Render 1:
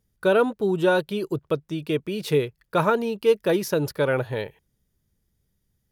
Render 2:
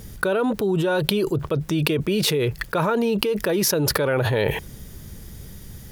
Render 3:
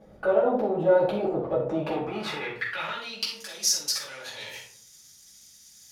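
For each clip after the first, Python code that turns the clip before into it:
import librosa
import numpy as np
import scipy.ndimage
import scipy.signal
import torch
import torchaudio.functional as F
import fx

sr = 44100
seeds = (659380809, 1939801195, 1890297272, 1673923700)

y1 = fx.env_flatten(x, sr, amount_pct=100)
y1 = y1 * 10.0 ** (-7.0 / 20.0)
y2 = np.where(y1 < 0.0, 10.0 ** (-7.0 / 20.0) * y1, y1)
y2 = fx.filter_sweep_bandpass(y2, sr, from_hz=600.0, to_hz=6200.0, start_s=1.77, end_s=3.36, q=2.5)
y2 = fx.room_shoebox(y2, sr, seeds[0], volume_m3=520.0, walls='furnished', distance_m=8.2)
y2 = y2 * 10.0 ** (-3.0 / 20.0)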